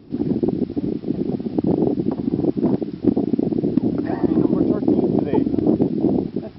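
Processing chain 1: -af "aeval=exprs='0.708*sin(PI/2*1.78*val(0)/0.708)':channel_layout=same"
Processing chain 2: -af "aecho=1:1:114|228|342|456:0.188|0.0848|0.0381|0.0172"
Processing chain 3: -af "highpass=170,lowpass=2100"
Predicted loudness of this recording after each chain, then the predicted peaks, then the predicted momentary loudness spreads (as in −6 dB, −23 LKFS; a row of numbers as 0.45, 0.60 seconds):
−13.0, −20.5, −21.5 LKFS; −3.0, −3.0, −3.5 dBFS; 4, 5, 6 LU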